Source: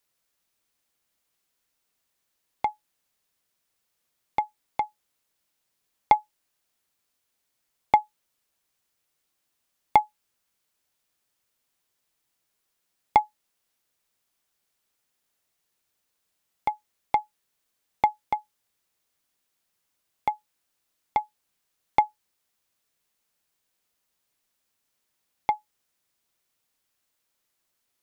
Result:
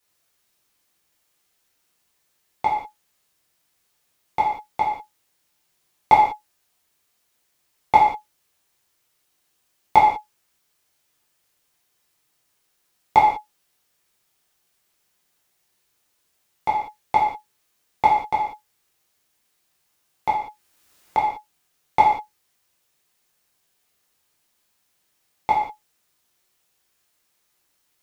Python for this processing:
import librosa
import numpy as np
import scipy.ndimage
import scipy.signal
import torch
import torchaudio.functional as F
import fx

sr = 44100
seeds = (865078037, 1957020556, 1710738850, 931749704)

y = fx.rev_gated(x, sr, seeds[0], gate_ms=220, shape='falling', drr_db=-7.0)
y = fx.band_squash(y, sr, depth_pct=70, at=(20.33, 21.18))